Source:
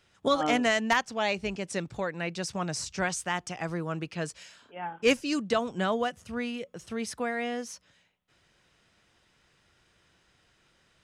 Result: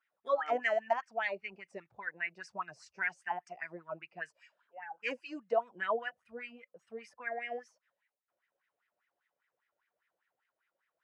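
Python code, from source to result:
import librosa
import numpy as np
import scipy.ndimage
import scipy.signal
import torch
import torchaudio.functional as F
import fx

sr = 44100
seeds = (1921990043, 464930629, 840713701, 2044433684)

y = fx.noise_reduce_blind(x, sr, reduce_db=11)
y = fx.wah_lfo(y, sr, hz=5.0, low_hz=530.0, high_hz=2100.0, q=5.8)
y = y * 10.0 ** (5.0 / 20.0)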